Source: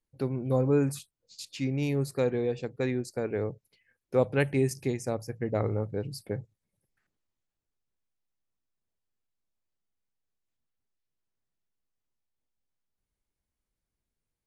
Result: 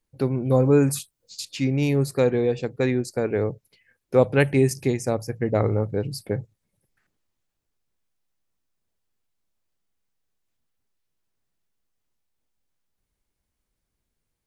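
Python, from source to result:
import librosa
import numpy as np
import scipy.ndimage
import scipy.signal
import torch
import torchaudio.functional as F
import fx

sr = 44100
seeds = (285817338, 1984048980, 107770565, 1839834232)

y = fx.high_shelf(x, sr, hz=5500.0, db=6.5, at=(0.62, 1.41))
y = y * 10.0 ** (7.0 / 20.0)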